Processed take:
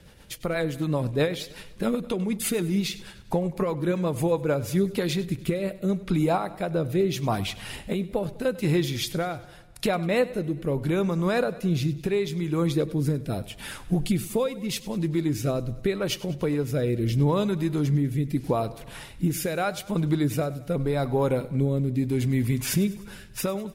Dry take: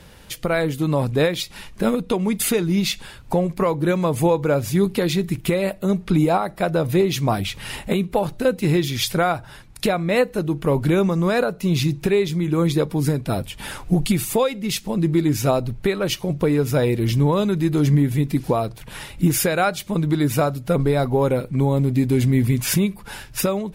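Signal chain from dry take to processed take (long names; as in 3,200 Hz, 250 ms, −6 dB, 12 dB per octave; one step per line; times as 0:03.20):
rotating-speaker cabinet horn 8 Hz, later 0.8 Hz, at 0:04.19
repeating echo 99 ms, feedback 56%, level −18 dB
level −4 dB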